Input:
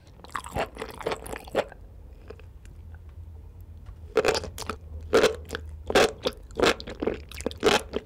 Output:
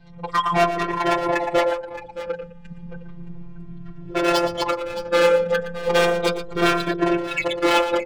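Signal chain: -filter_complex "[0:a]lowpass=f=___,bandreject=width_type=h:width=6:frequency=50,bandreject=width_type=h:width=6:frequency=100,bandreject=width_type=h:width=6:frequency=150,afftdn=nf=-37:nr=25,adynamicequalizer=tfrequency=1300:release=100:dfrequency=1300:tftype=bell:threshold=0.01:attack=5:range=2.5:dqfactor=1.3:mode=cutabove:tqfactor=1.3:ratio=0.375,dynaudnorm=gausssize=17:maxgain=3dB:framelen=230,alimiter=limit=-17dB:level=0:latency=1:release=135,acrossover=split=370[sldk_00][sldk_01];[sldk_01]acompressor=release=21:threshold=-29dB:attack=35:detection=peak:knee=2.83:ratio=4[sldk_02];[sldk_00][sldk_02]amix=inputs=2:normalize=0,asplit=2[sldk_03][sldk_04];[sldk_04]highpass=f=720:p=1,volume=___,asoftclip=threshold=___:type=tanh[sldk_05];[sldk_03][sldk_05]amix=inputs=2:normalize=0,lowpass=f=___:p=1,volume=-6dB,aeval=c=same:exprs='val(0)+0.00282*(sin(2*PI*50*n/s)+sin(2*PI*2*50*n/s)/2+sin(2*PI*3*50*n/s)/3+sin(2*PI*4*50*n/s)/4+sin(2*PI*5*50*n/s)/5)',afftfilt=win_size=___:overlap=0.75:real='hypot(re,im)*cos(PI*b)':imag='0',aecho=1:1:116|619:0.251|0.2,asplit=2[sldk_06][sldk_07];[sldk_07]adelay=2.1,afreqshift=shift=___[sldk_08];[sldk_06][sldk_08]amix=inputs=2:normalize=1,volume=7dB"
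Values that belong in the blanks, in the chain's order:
4700, 36dB, -11dB, 2900, 1024, -0.33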